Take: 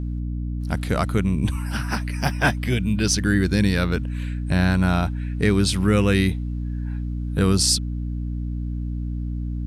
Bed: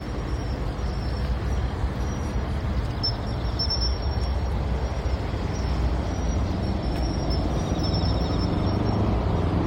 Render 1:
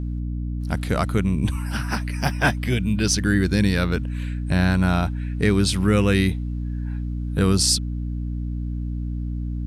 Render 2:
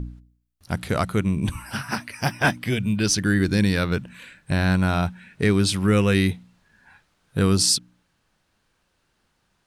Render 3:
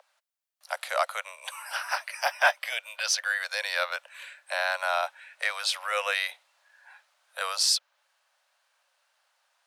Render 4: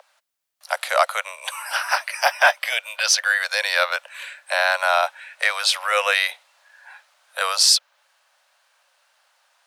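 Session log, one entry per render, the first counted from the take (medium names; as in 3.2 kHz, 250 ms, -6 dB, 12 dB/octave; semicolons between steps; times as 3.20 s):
no audible change
de-hum 60 Hz, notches 5
dynamic bell 9 kHz, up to -8 dB, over -42 dBFS, Q 1; steep high-pass 540 Hz 96 dB/octave
trim +8.5 dB; peak limiter -3 dBFS, peak gain reduction 3 dB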